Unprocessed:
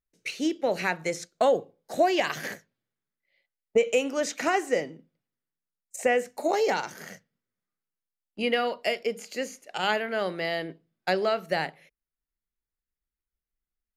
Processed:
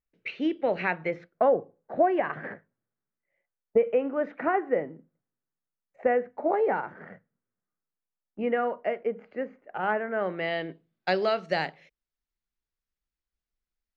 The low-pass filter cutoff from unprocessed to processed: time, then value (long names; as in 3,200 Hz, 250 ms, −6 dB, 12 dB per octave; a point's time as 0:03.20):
low-pass filter 24 dB per octave
0:00.96 2,900 Hz
0:01.52 1,700 Hz
0:10.13 1,700 Hz
0:10.51 3,300 Hz
0:11.38 6,100 Hz